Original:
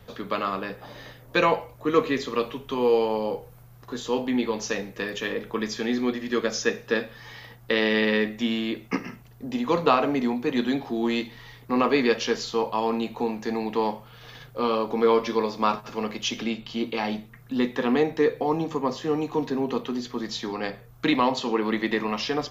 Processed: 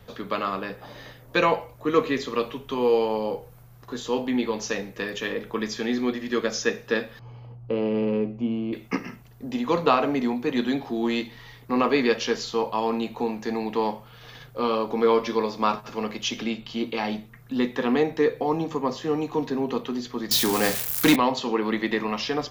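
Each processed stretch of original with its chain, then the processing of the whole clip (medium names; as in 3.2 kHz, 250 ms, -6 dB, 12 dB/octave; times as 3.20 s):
7.19–8.73 s: boxcar filter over 24 samples + peaking EQ 120 Hz +9 dB 0.21 oct
20.31–21.16 s: zero-crossing glitches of -23 dBFS + waveshaping leveller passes 2
whole clip: none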